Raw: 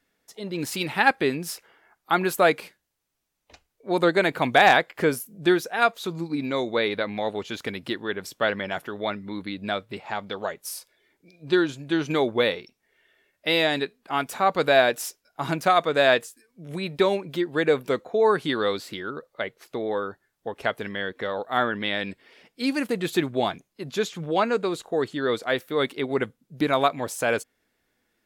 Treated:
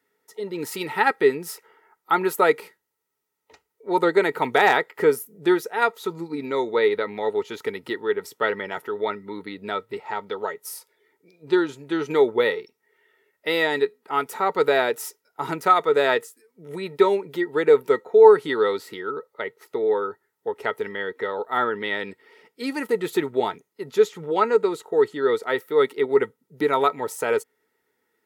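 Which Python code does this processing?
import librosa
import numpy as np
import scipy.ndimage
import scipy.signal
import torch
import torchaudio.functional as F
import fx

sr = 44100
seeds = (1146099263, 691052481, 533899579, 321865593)

y = scipy.signal.sosfilt(scipy.signal.butter(2, 94.0, 'highpass', fs=sr, output='sos'), x)
y = fx.high_shelf(y, sr, hz=10000.0, db=10.5)
y = fx.small_body(y, sr, hz=(430.0, 910.0, 1300.0, 1900.0), ring_ms=45, db=16)
y = F.gain(torch.from_numpy(y), -6.0).numpy()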